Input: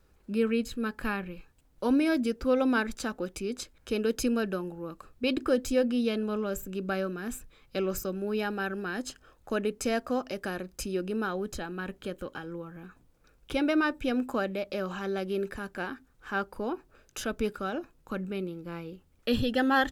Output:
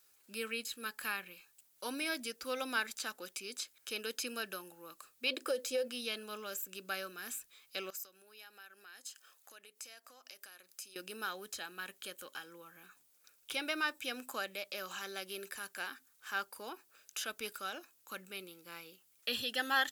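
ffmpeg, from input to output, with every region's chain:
-filter_complex "[0:a]asettb=1/sr,asplit=3[s0][s1][s2];[s0]atrim=end=5.304[s3];[s1]atrim=start=5.3:end=5.88,asetpts=PTS-STARTPTS,afade=t=in:d=0.004:c=qsin,afade=t=out:st=0.576:d=0.004:c=qsin,equalizer=f=520:t=o:w=0.52:g=13,acompressor=threshold=0.158:ratio=10:attack=3.2:release=140:knee=1:detection=peak[s4];[s2]atrim=start=5.876[s5];[s3][s4]acrossfade=d=0.004:c1=hsin:c2=qsin[s6];[s6][s5]acrossfade=d=0.004:c1=qsin:c2=hsin,asettb=1/sr,asplit=3[s7][s8][s9];[s7]atrim=end=7.904[s10];[s8]atrim=start=7.9:end=10.96,asetpts=PTS-STARTPTS,afade=t=in:d=0.004:c=qsin,afade=t=out:st=3.056:d=0.004:c=qsin,highpass=f=460:p=1,acompressor=threshold=0.00398:ratio=4:attack=3.2:release=140:knee=1:detection=peak[s11];[s9]atrim=start=10.956[s12];[s10][s11]acrossfade=d=0.004:c1=hsin:c2=qsin[s13];[s13][s12]acrossfade=d=0.004:c1=qsin:c2=hsin,acrossover=split=4000[s14][s15];[s15]acompressor=threshold=0.00316:ratio=4:attack=1:release=60[s16];[s14][s16]amix=inputs=2:normalize=0,aderivative,volume=2.82"

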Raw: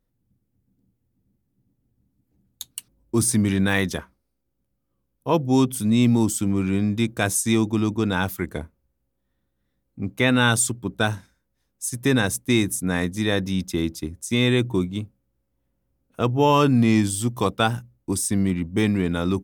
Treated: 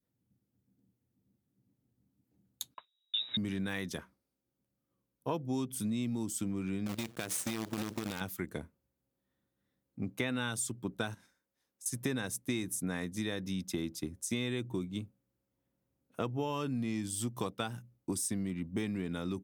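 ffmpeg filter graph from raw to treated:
-filter_complex "[0:a]asettb=1/sr,asplit=3[s0][s1][s2];[s0]atrim=end=2.744[s3];[s1]atrim=start=2.74:end=3.37,asetpts=PTS-STARTPTS,afade=t=in:d=0.004:c=qsin,afade=t=out:st=0.626:d=0.004:c=qsin,agate=range=0.251:threshold=0.00282:ratio=16:release=100:detection=peak,aeval=exprs='(tanh(4.47*val(0)+0.15)-tanh(0.15))/4.47':c=same,lowpass=f=3300:t=q:w=0.5098,lowpass=f=3300:t=q:w=0.6013,lowpass=f=3300:t=q:w=0.9,lowpass=f=3300:t=q:w=2.563,afreqshift=-3900[s4];[s2]atrim=start=3.366[s5];[s3][s4]acrossfade=d=0.004:c1=hsin:c2=qsin[s6];[s6][s5]acrossfade=d=0.004:c1=qsin:c2=hsin,asettb=1/sr,asplit=3[s7][s8][s9];[s7]atrim=end=6.864[s10];[s8]atrim=start=6.86:end=8.21,asetpts=PTS-STARTPTS,afade=t=in:d=0.004:c=qsin,afade=t=out:st=1.346:d=0.004:c=qsin,acompressor=threshold=0.0891:ratio=16:attack=3.2:release=140:knee=1:detection=peak,acrusher=bits=5:dc=4:mix=0:aa=0.000001[s11];[s9]atrim=start=8.206[s12];[s10][s11]acrossfade=d=0.004:c1=hsin:c2=qsin[s13];[s13][s12]acrossfade=d=0.004:c1=qsin:c2=hsin,asettb=1/sr,asplit=3[s14][s15][s16];[s14]atrim=end=11.144[s17];[s15]atrim=start=11.14:end=11.86,asetpts=PTS-STARTPTS,afade=t=in:d=0.004:c=qsin,afade=t=out:st=0.716:d=0.004:c=qsin,equalizer=f=100:w=0.6:g=-11,acompressor=threshold=0.00501:ratio=4:attack=3.2:release=140:knee=1:detection=peak[s18];[s16]atrim=start=11.856[s19];[s17][s18]acrossfade=d=0.004:c1=hsin:c2=qsin[s20];[s20][s19]acrossfade=d=0.004:c1=qsin:c2=hsin,acompressor=threshold=0.0501:ratio=6,highpass=110,adynamicequalizer=threshold=0.00708:dfrequency=860:dqfactor=0.75:tfrequency=860:tqfactor=0.75:attack=5:release=100:ratio=0.375:range=2.5:mode=cutabove:tftype=bell,volume=0.562"

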